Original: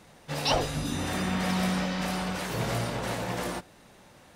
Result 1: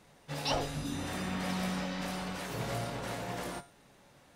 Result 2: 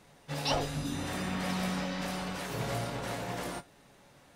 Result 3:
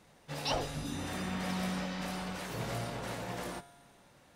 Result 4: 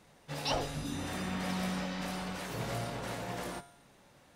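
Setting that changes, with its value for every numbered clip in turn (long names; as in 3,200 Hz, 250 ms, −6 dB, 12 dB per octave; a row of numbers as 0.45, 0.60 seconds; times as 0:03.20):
tuned comb filter, decay: 0.42, 0.16, 1.8, 0.87 seconds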